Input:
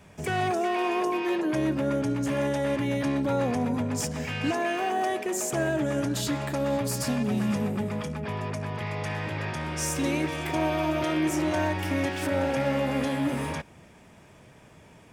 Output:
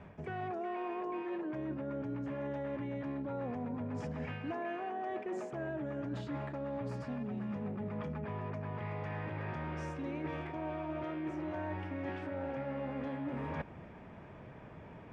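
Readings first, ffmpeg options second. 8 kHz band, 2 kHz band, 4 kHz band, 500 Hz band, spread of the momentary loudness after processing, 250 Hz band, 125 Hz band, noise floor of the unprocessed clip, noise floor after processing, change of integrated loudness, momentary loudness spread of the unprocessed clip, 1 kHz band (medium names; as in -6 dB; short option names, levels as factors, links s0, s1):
under -30 dB, -14.0 dB, -21.5 dB, -11.5 dB, 2 LU, -11.5 dB, -10.0 dB, -53 dBFS, -51 dBFS, -12.0 dB, 6 LU, -11.5 dB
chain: -af "lowpass=1800,areverse,acompressor=threshold=0.0126:ratio=12,areverse,volume=1.26"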